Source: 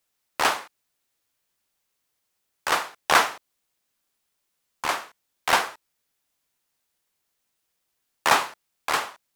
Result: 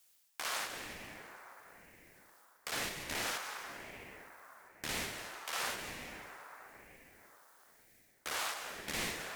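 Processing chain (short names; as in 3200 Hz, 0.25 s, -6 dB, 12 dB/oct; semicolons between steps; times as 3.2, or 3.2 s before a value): HPF 1500 Hz 6 dB/oct; high shelf 4500 Hz +6 dB; limiter -18.5 dBFS, peak gain reduction 13 dB; reverse; compressor 5:1, threshold -42 dBFS, peak gain reduction 15 dB; reverse; reverb RT60 5.0 s, pre-delay 0.108 s, DRR 3 dB; ring modulator with a swept carrier 540 Hz, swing 65%, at 1 Hz; gain +8 dB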